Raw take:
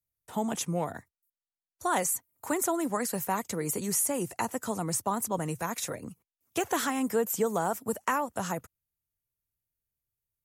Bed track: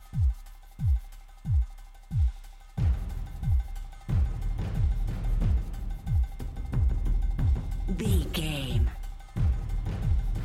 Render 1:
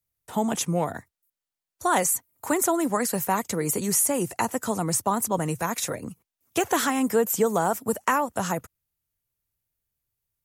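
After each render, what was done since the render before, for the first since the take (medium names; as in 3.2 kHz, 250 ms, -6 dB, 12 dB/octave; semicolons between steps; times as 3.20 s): trim +5.5 dB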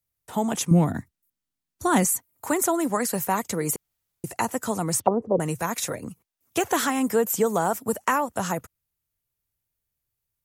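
0.71–2.05 s: resonant low shelf 360 Hz +9.5 dB, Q 1.5; 3.76–4.24 s: room tone; 5.00–5.40 s: touch-sensitive low-pass 460–3700 Hz down, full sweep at -22 dBFS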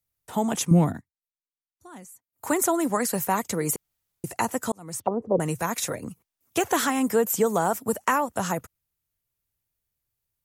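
0.88–2.46 s: dip -24 dB, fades 0.14 s; 4.72–5.36 s: fade in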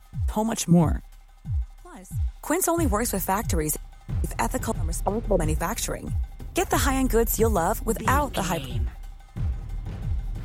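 add bed track -2 dB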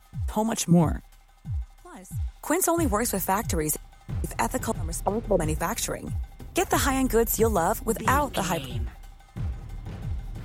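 bass shelf 76 Hz -7.5 dB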